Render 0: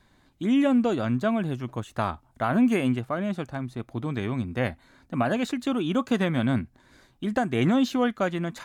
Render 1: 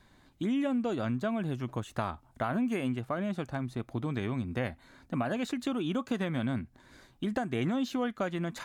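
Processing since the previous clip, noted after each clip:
downward compressor 3 to 1, threshold −30 dBFS, peak gain reduction 10 dB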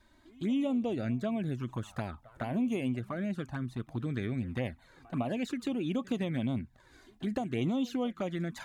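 echo ahead of the sound 158 ms −22 dB
flanger swept by the level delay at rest 3.4 ms, full sweep at −26.5 dBFS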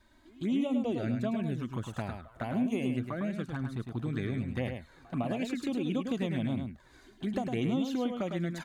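single-tap delay 105 ms −6 dB

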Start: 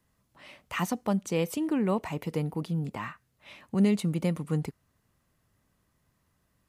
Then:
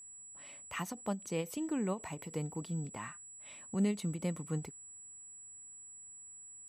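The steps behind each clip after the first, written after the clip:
steady tone 7,800 Hz −42 dBFS
every ending faded ahead of time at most 230 dB per second
level −7.5 dB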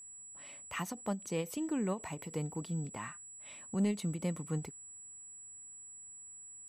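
soft clipping −22.5 dBFS, distortion −25 dB
level +1 dB

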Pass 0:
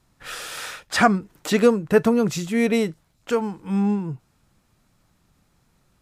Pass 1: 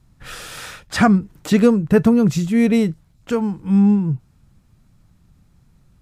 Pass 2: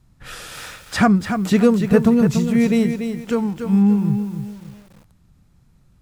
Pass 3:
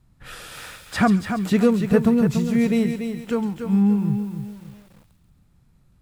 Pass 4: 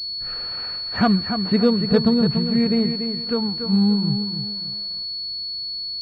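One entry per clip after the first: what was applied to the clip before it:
bass and treble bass +13 dB, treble 0 dB; level −1 dB
feedback echo at a low word length 288 ms, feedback 35%, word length 7 bits, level −7.5 dB; level −1 dB
parametric band 6,000 Hz −4 dB 0.75 octaves; delay with a high-pass on its return 136 ms, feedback 50%, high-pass 3,200 Hz, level −7 dB; level −3 dB
echo ahead of the sound 61 ms −24 dB; switching amplifier with a slow clock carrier 4,400 Hz

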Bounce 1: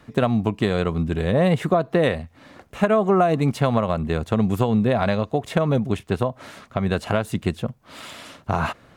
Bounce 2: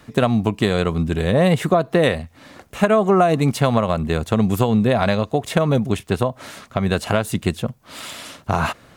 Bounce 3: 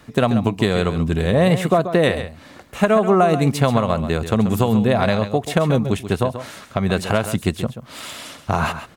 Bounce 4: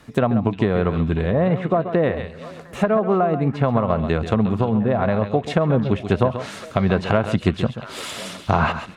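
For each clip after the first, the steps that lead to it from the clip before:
high-shelf EQ 4,300 Hz +8 dB; level +2.5 dB
single-tap delay 134 ms −11 dB
treble cut that deepens with the level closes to 1,600 Hz, closed at −13.5 dBFS; speech leveller within 3 dB 0.5 s; echo through a band-pass that steps 353 ms, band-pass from 3,400 Hz, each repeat −1.4 octaves, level −11 dB; level −1 dB

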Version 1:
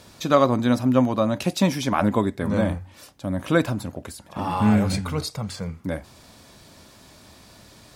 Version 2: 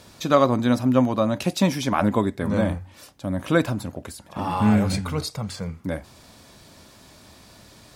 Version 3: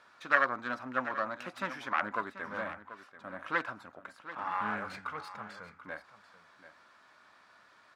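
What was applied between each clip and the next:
no processing that can be heard
phase distortion by the signal itself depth 0.28 ms; resonant band-pass 1,400 Hz, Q 2.7; single-tap delay 736 ms −14 dB

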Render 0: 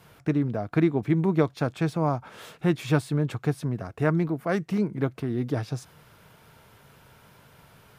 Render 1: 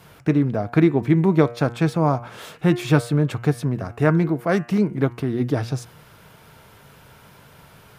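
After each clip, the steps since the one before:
hum removal 118.4 Hz, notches 25
level +6 dB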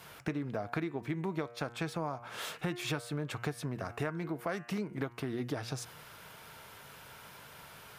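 low-shelf EQ 480 Hz −10.5 dB
downward compressor 10 to 1, threshold −32 dBFS, peak gain reduction 16 dB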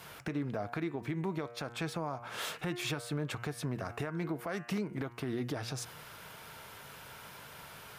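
brickwall limiter −28 dBFS, peak gain reduction 7 dB
level +2 dB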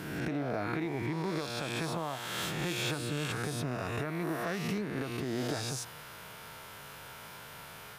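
peak hold with a rise ahead of every peak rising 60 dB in 1.52 s
level −1 dB

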